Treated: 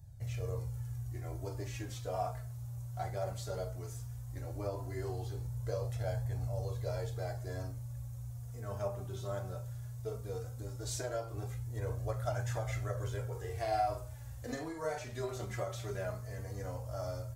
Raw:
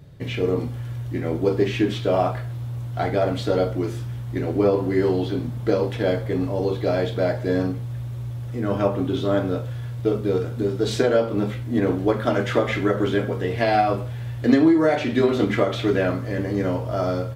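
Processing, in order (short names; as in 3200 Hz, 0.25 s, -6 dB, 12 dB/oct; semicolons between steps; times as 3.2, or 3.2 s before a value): EQ curve 110 Hz 0 dB, 230 Hz -27 dB, 680 Hz -9 dB, 3300 Hz -17 dB, 6600 Hz +3 dB; flange 0.16 Hz, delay 1.1 ms, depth 4.4 ms, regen +28%; 13.3–14.99 doubler 46 ms -7 dB; gain -1.5 dB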